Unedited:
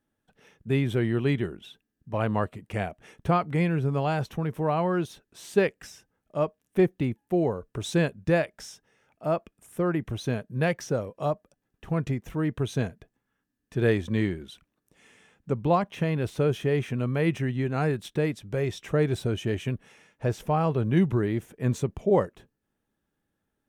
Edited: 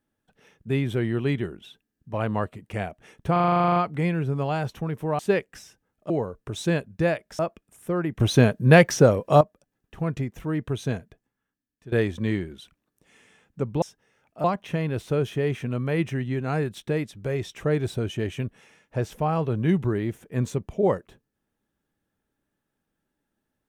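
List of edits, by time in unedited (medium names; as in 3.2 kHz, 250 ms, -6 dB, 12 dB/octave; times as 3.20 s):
3.32 s: stutter 0.04 s, 12 plays
4.75–5.47 s: delete
6.38–7.38 s: delete
8.67–9.29 s: move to 15.72 s
10.10–11.31 s: gain +11.5 dB
12.85–13.82 s: fade out, to -15.5 dB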